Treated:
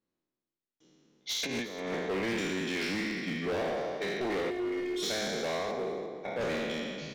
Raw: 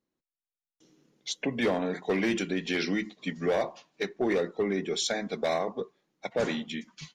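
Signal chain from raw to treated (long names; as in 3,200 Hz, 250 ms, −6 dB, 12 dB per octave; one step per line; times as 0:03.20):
peak hold with a decay on every bin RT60 1.92 s
low-pass filter 5,700 Hz 12 dB per octave
0:01.29–0:01.95: compressor whose output falls as the input rises −28 dBFS, ratio −0.5
0:04.50–0:05.03: phases set to zero 358 Hz
0:05.71–0:06.41: high-shelf EQ 3,100 Hz −11.5 dB
gain into a clipping stage and back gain 24.5 dB
single-tap delay 351 ms −16.5 dB
level −4.5 dB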